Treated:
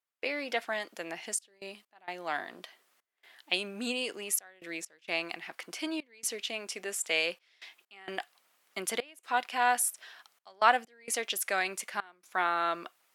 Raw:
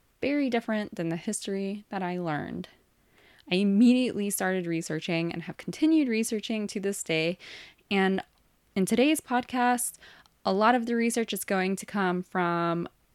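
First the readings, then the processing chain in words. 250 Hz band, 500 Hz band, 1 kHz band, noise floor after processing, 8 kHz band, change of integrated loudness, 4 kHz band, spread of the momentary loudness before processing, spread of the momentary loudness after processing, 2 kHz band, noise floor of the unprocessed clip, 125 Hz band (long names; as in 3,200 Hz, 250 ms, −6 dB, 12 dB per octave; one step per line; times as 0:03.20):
−18.0 dB, −8.0 dB, −1.5 dB, −75 dBFS, +1.0 dB, −5.0 dB, 0.0 dB, 10 LU, 19 LU, −0.5 dB, −67 dBFS, −24.0 dB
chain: high-pass filter 760 Hz 12 dB per octave
gate pattern ".xxxxx.x.xxxx" 65 BPM −24 dB
level +1.5 dB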